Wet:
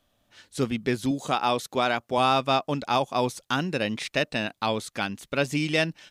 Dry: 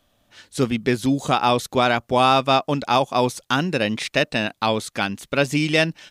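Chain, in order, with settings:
0:01.11–0:02.18: high-pass filter 190 Hz 6 dB per octave
level −5.5 dB

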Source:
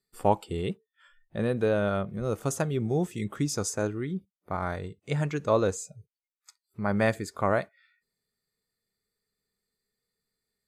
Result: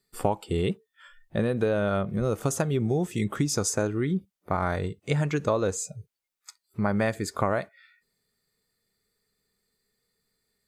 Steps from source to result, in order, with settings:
downward compressor 6 to 1, threshold −29 dBFS, peak gain reduction 12.5 dB
level +7.5 dB

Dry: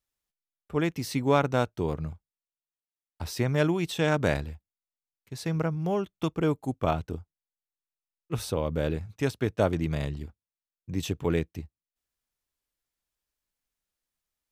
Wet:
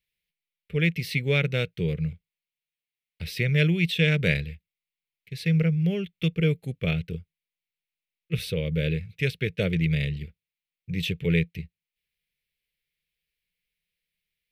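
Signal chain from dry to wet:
drawn EQ curve 110 Hz 0 dB, 170 Hz +9 dB, 270 Hz −11 dB, 480 Hz +2 dB, 720 Hz −17 dB, 1,000 Hz −23 dB, 2,200 Hz +13 dB, 4,100 Hz +5 dB, 6,800 Hz −9 dB, 11,000 Hz 0 dB

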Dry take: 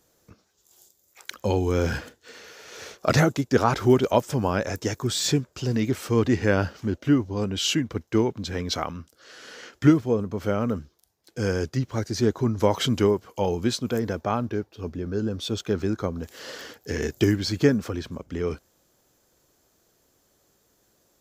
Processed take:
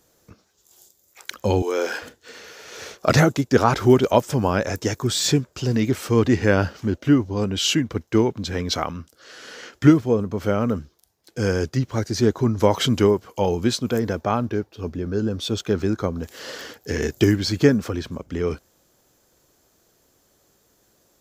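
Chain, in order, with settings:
0:01.62–0:02.02: high-pass filter 370 Hz 24 dB per octave
level +3.5 dB

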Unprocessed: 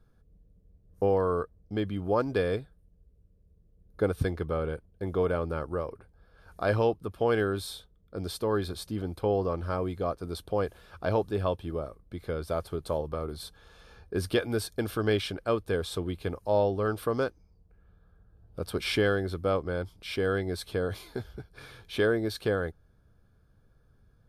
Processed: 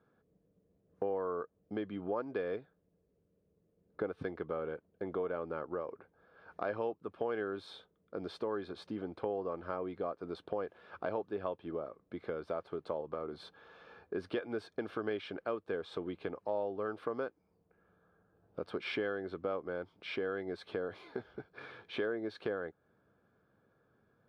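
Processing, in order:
band-pass filter 250–2,300 Hz
downward compressor 2.5 to 1, threshold −39 dBFS, peak gain reduction 12.5 dB
level +1.5 dB

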